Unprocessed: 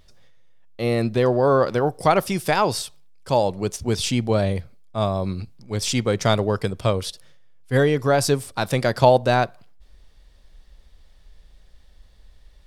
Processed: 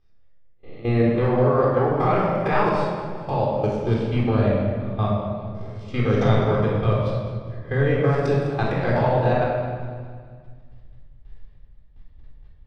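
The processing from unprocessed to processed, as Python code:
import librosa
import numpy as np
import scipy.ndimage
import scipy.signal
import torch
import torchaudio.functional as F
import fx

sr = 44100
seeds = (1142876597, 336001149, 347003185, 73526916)

y = fx.spec_swells(x, sr, rise_s=0.5)
y = scipy.signal.sosfilt(scipy.signal.butter(2, 2400.0, 'lowpass', fs=sr, output='sos'), y)
y = fx.low_shelf(y, sr, hz=110.0, db=2.0)
y = fx.level_steps(y, sr, step_db=21)
y = fx.chopper(y, sr, hz=1.7, depth_pct=65, duty_pct=85)
y = fx.echo_feedback(y, sr, ms=206, feedback_pct=50, wet_db=-14.0)
y = fx.room_shoebox(y, sr, seeds[0], volume_m3=1600.0, walls='mixed', distance_m=3.8)
y = F.gain(torch.from_numpy(y), -4.5).numpy()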